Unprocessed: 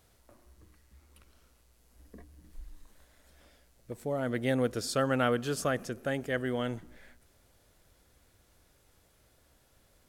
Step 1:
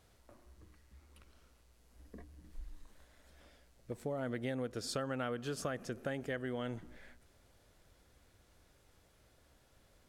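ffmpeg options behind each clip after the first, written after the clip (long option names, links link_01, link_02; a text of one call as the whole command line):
ffmpeg -i in.wav -af "highshelf=frequency=9600:gain=-9,acompressor=threshold=-34dB:ratio=6,volume=-1dB" out.wav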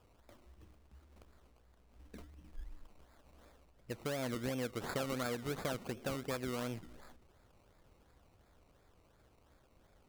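ffmpeg -i in.wav -af "acrusher=samples=21:mix=1:aa=0.000001:lfo=1:lforange=12.6:lforate=2.8" out.wav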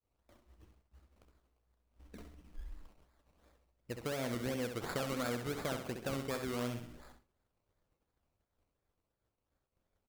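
ffmpeg -i in.wav -af "aecho=1:1:66|132|198|264|330:0.447|0.188|0.0788|0.0331|0.0139,agate=range=-33dB:threshold=-53dB:ratio=3:detection=peak" out.wav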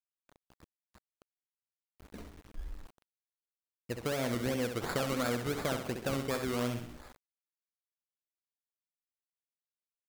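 ffmpeg -i in.wav -af "aeval=exprs='val(0)*gte(abs(val(0)),0.00178)':channel_layout=same,volume=4.5dB" out.wav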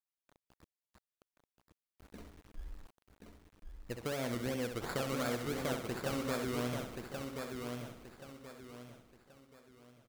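ffmpeg -i in.wav -af "aecho=1:1:1079|2158|3237|4316:0.562|0.191|0.065|0.0221,volume=-4dB" out.wav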